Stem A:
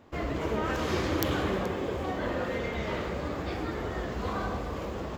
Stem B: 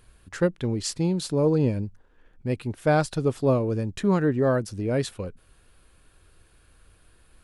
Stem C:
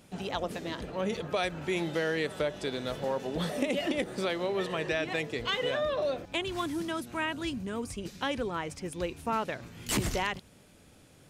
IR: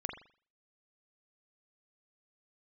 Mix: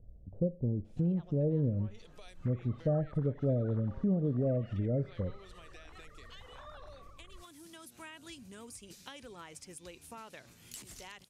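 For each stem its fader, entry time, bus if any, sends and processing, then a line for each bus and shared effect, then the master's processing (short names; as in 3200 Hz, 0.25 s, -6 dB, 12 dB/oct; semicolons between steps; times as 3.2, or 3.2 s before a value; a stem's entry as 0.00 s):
-17.0 dB, 2.30 s, no send, sine-wave speech; compressor, threshold -30 dBFS, peak gain reduction 7 dB; fixed phaser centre 1200 Hz, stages 4
+1.5 dB, 0.00 s, send -13.5 dB, steep low-pass 630 Hz 48 dB/oct; bell 370 Hz -10 dB 1 oct; compressor 2:1, threshold -35 dBFS, peak gain reduction 8.5 dB
0.0 dB, 0.85 s, no send, pre-emphasis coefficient 0.8; compressor 10:1, threshold -44 dBFS, peak gain reduction 15 dB; auto duck -7 dB, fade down 1.20 s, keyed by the second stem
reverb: on, pre-delay 41 ms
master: treble ducked by the level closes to 1300 Hz, closed at -27 dBFS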